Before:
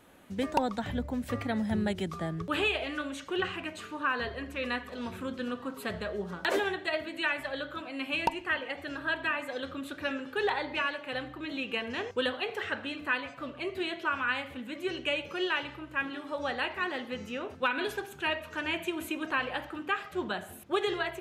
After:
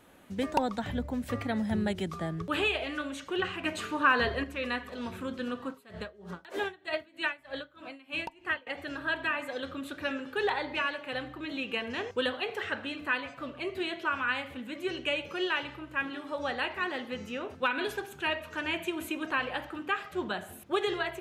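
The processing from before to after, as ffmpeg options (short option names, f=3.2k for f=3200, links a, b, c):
-filter_complex "[0:a]asettb=1/sr,asplit=3[a][b][c];[a]atrim=end=3.644[d];[b]atrim=start=3.64:end=4.44,asetpts=PTS-STARTPTS,afade=t=in:d=0.004:c=qsin,afade=t=out:st=0.796:d=0.004:c=qsin,acontrast=58[e];[c]atrim=start=4.436[f];[d][e]acrossfade=d=0.004:c1=hsin:c2=qsin[g];[g][f]acrossfade=d=0.004:c1=qsin:c2=hsin,asettb=1/sr,asplit=3[h][i][j];[h]atrim=end=5.694[k];[i]atrim=start=5.69:end=8.67,asetpts=PTS-STARTPTS,afade=t=in:d=0.004:c=qsin,afade=t=out:st=2.976:d=0.004:c=qsin,aeval=exprs='val(0)*pow(10,-22*(0.5-0.5*cos(2*PI*3.2*n/s))/20)':c=same[l];[j]atrim=start=8.666[m];[k][l]acrossfade=d=0.004:c1=hsin:c2=qsin[n];[n][m]acrossfade=d=0.004:c1=qsin:c2=hsin"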